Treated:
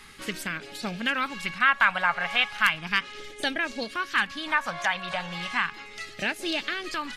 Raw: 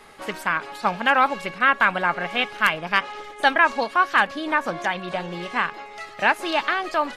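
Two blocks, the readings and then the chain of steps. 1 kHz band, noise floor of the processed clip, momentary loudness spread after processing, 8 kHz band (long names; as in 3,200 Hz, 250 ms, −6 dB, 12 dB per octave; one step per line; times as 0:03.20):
−8.0 dB, −45 dBFS, 11 LU, +1.5 dB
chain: in parallel at +1 dB: downward compressor, threshold −27 dBFS, peak gain reduction 15 dB
on the sum: all-pass phaser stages 2, 0.35 Hz, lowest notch 310–1,000 Hz
level −3.5 dB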